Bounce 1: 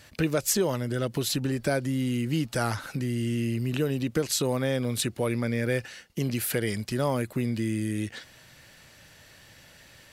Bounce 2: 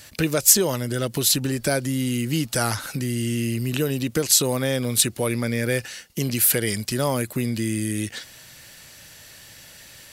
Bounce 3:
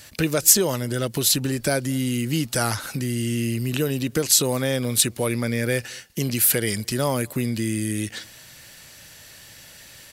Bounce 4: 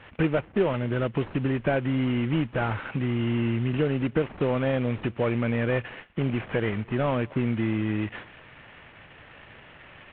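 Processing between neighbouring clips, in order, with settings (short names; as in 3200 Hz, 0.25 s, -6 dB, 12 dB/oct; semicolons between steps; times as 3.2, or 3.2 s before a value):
high shelf 4300 Hz +11.5 dB; gain +3 dB
outdoor echo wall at 38 m, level -29 dB
CVSD 16 kbps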